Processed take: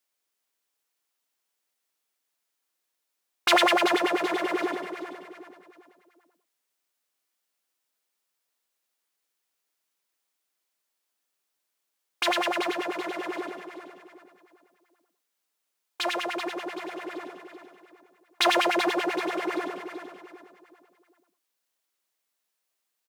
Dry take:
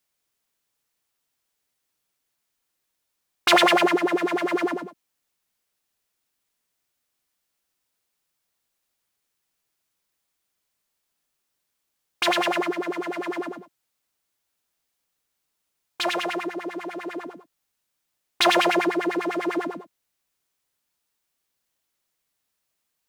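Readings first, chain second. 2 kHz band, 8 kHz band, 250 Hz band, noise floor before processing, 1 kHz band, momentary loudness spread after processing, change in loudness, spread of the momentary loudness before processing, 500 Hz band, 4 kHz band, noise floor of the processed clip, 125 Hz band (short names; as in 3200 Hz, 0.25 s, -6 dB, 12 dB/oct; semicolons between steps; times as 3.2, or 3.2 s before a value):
-2.5 dB, -2.5 dB, -4.5 dB, -79 dBFS, -2.5 dB, 20 LU, -3.5 dB, 16 LU, -3.0 dB, -2.5 dB, -81 dBFS, -10.5 dB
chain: HPF 290 Hz 12 dB/oct; feedback echo 0.382 s, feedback 37%, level -9 dB; gain -3 dB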